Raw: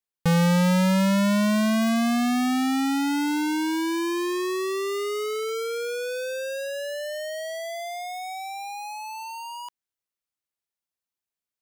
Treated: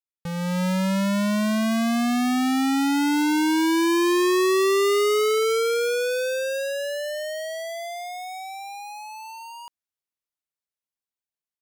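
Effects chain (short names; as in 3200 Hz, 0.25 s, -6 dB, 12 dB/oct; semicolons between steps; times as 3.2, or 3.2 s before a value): Doppler pass-by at 4.97, 6 m/s, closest 7.9 m; AGC gain up to 8 dB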